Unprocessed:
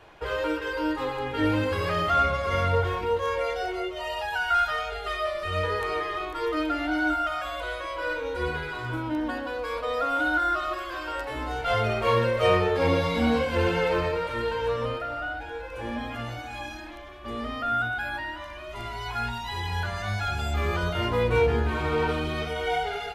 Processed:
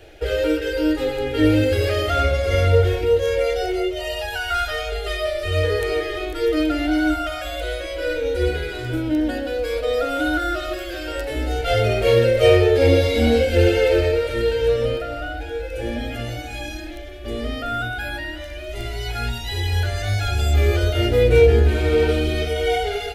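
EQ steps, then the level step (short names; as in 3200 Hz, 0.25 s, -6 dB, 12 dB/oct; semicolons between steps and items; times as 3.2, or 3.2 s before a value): low shelf 310 Hz +6.5 dB; high shelf 8400 Hz +6.5 dB; fixed phaser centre 430 Hz, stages 4; +7.5 dB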